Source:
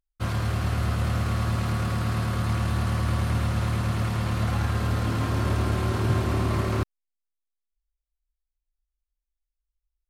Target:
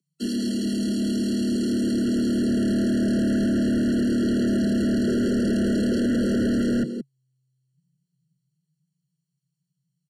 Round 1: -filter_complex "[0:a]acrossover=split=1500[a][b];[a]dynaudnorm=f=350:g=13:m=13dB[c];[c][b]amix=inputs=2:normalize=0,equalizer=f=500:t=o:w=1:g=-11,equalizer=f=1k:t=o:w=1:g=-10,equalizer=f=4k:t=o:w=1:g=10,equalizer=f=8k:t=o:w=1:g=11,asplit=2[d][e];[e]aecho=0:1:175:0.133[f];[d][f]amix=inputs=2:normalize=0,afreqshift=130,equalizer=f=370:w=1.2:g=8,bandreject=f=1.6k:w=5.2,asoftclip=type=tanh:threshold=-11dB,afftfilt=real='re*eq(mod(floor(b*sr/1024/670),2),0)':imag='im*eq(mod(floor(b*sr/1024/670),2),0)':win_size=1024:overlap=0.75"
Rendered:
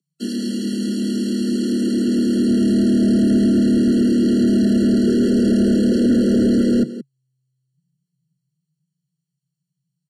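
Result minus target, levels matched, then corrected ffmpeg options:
soft clip: distortion -6 dB
-filter_complex "[0:a]acrossover=split=1500[a][b];[a]dynaudnorm=f=350:g=13:m=13dB[c];[c][b]amix=inputs=2:normalize=0,equalizer=f=500:t=o:w=1:g=-11,equalizer=f=1k:t=o:w=1:g=-10,equalizer=f=4k:t=o:w=1:g=10,equalizer=f=8k:t=o:w=1:g=11,asplit=2[d][e];[e]aecho=0:1:175:0.133[f];[d][f]amix=inputs=2:normalize=0,afreqshift=130,equalizer=f=370:w=1.2:g=8,bandreject=f=1.6k:w=5.2,asoftclip=type=tanh:threshold=-20dB,afftfilt=real='re*eq(mod(floor(b*sr/1024/670),2),0)':imag='im*eq(mod(floor(b*sr/1024/670),2),0)':win_size=1024:overlap=0.75"

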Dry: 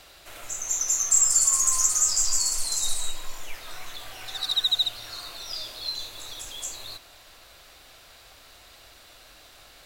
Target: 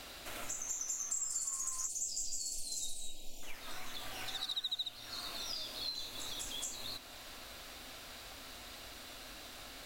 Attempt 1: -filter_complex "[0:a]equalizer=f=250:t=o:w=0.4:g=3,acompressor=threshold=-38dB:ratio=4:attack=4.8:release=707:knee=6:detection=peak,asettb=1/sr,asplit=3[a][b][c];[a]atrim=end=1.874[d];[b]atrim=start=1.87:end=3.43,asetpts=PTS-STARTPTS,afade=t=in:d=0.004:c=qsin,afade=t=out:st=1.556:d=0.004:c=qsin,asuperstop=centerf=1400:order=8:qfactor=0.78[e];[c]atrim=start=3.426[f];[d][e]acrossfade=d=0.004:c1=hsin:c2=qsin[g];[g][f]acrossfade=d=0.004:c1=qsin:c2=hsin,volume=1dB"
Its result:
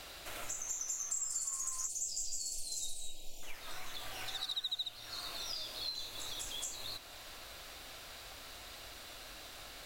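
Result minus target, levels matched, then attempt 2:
250 Hz band -4.0 dB
-filter_complex "[0:a]equalizer=f=250:t=o:w=0.4:g=11,acompressor=threshold=-38dB:ratio=4:attack=4.8:release=707:knee=6:detection=peak,asettb=1/sr,asplit=3[a][b][c];[a]atrim=end=1.874[d];[b]atrim=start=1.87:end=3.43,asetpts=PTS-STARTPTS,afade=t=in:d=0.004:c=qsin,afade=t=out:st=1.556:d=0.004:c=qsin,asuperstop=centerf=1400:order=8:qfactor=0.78[e];[c]atrim=start=3.426[f];[d][e]acrossfade=d=0.004:c1=hsin:c2=qsin[g];[g][f]acrossfade=d=0.004:c1=qsin:c2=hsin,volume=1dB"

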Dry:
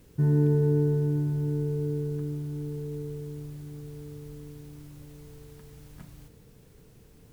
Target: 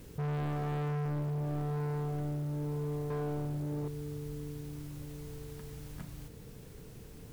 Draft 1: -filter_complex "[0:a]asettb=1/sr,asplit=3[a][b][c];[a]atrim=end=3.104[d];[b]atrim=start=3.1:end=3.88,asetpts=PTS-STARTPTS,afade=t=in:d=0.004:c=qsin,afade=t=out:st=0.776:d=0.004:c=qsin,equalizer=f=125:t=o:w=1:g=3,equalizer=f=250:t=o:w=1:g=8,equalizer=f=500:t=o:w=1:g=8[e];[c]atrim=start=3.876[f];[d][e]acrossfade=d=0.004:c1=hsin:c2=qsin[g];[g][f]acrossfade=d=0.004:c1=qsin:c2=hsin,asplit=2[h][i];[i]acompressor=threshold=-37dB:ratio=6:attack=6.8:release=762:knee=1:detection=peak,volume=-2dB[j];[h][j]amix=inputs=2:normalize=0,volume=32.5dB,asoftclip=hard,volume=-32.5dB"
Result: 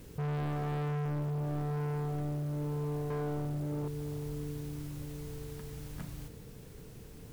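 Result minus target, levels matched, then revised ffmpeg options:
compressor: peak gain reduction -9 dB
-filter_complex "[0:a]asettb=1/sr,asplit=3[a][b][c];[a]atrim=end=3.104[d];[b]atrim=start=3.1:end=3.88,asetpts=PTS-STARTPTS,afade=t=in:d=0.004:c=qsin,afade=t=out:st=0.776:d=0.004:c=qsin,equalizer=f=125:t=o:w=1:g=3,equalizer=f=250:t=o:w=1:g=8,equalizer=f=500:t=o:w=1:g=8[e];[c]atrim=start=3.876[f];[d][e]acrossfade=d=0.004:c1=hsin:c2=qsin[g];[g][f]acrossfade=d=0.004:c1=qsin:c2=hsin,asplit=2[h][i];[i]acompressor=threshold=-47.5dB:ratio=6:attack=6.8:release=762:knee=1:detection=peak,volume=-2dB[j];[h][j]amix=inputs=2:normalize=0,volume=32.5dB,asoftclip=hard,volume=-32.5dB"

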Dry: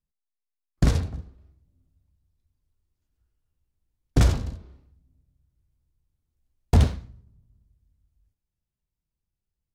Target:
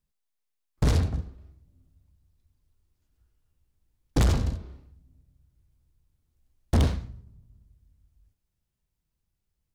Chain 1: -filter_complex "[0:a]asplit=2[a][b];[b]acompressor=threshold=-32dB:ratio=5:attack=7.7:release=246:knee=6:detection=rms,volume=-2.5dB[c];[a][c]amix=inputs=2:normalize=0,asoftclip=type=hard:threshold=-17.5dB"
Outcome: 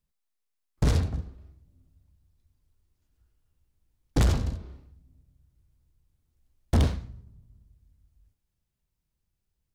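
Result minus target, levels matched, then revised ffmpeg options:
compressor: peak gain reduction +9.5 dB
-filter_complex "[0:a]asplit=2[a][b];[b]acompressor=threshold=-20dB:ratio=5:attack=7.7:release=246:knee=6:detection=rms,volume=-2.5dB[c];[a][c]amix=inputs=2:normalize=0,asoftclip=type=hard:threshold=-17.5dB"

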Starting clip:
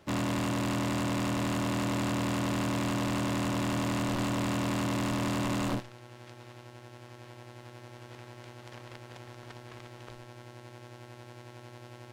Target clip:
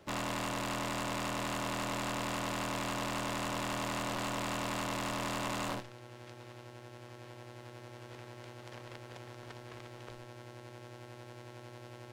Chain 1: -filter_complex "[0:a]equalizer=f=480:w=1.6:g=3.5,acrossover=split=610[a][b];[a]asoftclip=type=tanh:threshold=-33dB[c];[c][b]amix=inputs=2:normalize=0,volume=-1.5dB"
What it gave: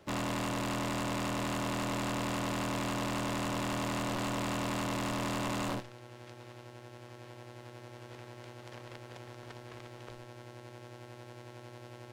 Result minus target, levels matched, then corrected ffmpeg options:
soft clip: distortion -4 dB
-filter_complex "[0:a]equalizer=f=480:w=1.6:g=3.5,acrossover=split=610[a][b];[a]asoftclip=type=tanh:threshold=-39dB[c];[c][b]amix=inputs=2:normalize=0,volume=-1.5dB"

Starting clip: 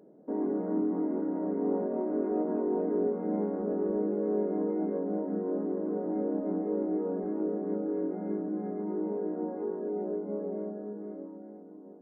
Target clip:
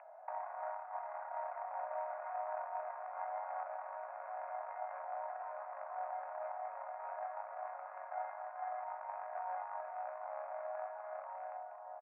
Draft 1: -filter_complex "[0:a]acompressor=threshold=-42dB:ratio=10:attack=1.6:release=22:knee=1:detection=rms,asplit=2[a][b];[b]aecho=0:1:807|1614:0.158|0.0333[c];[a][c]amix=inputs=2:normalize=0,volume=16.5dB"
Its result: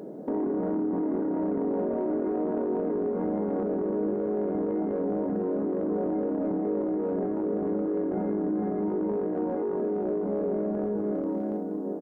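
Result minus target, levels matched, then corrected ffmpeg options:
1000 Hz band -15.0 dB
-filter_complex "[0:a]acompressor=threshold=-42dB:ratio=10:attack=1.6:release=22:knee=1:detection=rms,asuperpass=centerf=1300:order=20:qfactor=0.67,asplit=2[a][b];[b]aecho=0:1:807|1614:0.158|0.0333[c];[a][c]amix=inputs=2:normalize=0,volume=16.5dB"

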